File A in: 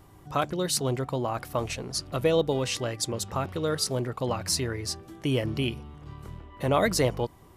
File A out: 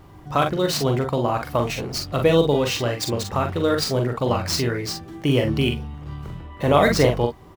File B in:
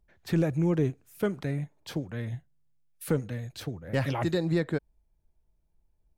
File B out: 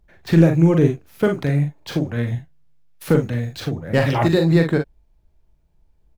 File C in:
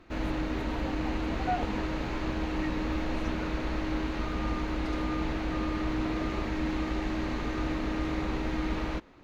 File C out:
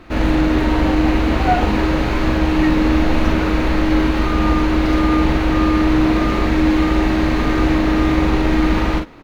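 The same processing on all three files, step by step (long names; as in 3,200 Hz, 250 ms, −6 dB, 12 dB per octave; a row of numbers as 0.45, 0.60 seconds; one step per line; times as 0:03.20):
running median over 5 samples
on a send: ambience of single reflections 42 ms −5.5 dB, 55 ms −12 dB
on the sum: normalise the peak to −2 dBFS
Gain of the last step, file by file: +6.5, +10.0, +13.5 decibels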